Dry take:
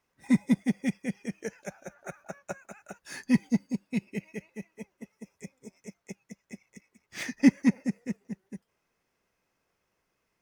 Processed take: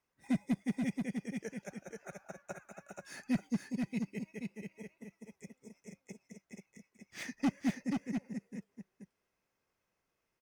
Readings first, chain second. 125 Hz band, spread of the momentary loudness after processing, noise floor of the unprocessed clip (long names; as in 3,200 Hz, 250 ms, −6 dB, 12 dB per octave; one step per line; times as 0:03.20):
−7.0 dB, 19 LU, −79 dBFS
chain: hard clipping −18 dBFS, distortion −11 dB
on a send: single-tap delay 481 ms −4.5 dB
on the sum: level −7.5 dB